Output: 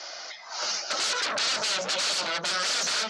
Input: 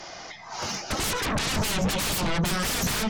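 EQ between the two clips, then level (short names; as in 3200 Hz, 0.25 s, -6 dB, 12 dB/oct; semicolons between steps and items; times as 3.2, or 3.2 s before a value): speaker cabinet 390–6900 Hz, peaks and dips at 590 Hz +8 dB, 1400 Hz +8 dB, 4400 Hz +5 dB; high shelf 2200 Hz +11.5 dB; -7.0 dB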